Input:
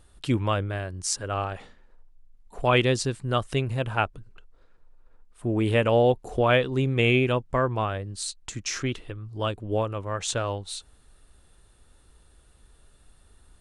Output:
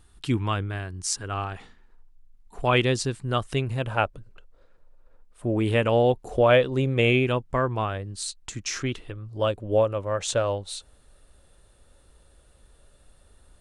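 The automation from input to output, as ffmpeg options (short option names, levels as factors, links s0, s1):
-af "asetnsamples=n=441:p=0,asendcmd='2.63 equalizer g -2.5;3.86 equalizer g 8;5.57 equalizer g -1;6.31 equalizer g 7.5;7.13 equalizer g -1.5;9.13 equalizer g 9',equalizer=f=560:t=o:w=0.34:g=-12"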